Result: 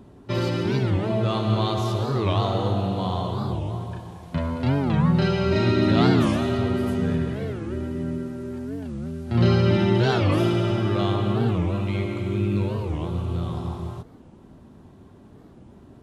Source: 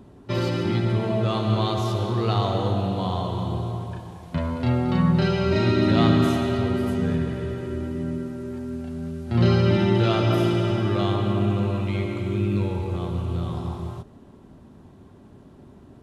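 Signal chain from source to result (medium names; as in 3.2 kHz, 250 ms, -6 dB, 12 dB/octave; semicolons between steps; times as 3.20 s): warped record 45 rpm, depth 250 cents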